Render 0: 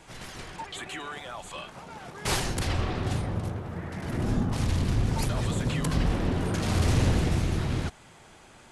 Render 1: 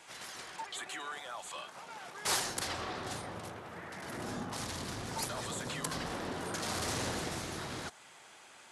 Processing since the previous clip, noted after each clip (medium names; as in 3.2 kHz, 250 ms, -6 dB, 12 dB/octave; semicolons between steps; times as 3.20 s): high-pass 1 kHz 6 dB/octave; dynamic bell 2.6 kHz, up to -6 dB, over -51 dBFS, Q 1.6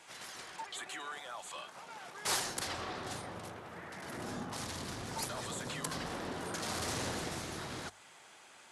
hum notches 50/100 Hz; trim -1.5 dB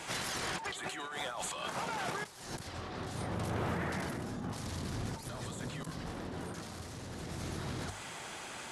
compressor with a negative ratio -49 dBFS, ratio -1; bass shelf 260 Hz +11.5 dB; trim +5.5 dB